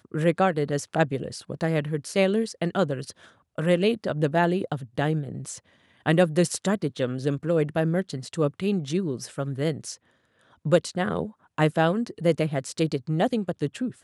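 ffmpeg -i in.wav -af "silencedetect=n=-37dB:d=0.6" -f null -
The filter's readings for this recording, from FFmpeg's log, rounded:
silence_start: 9.95
silence_end: 10.65 | silence_duration: 0.70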